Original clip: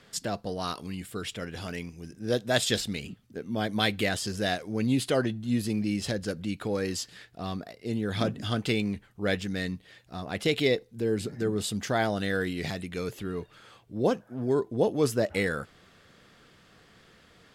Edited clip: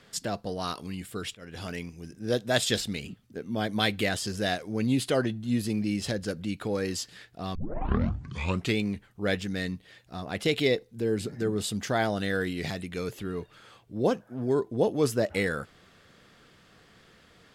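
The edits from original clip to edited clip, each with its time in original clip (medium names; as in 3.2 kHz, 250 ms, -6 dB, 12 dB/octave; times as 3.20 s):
1.35–1.62 s: fade in, from -23 dB
7.55 s: tape start 1.22 s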